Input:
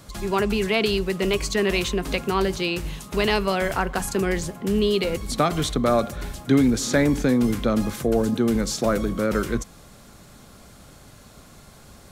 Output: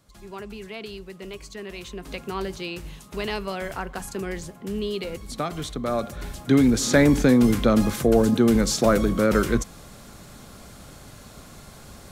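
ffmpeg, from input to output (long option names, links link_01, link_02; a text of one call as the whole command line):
ffmpeg -i in.wav -af "volume=3dB,afade=type=in:start_time=1.76:duration=0.55:silence=0.421697,afade=type=in:start_time=5.81:duration=1.27:silence=0.298538" out.wav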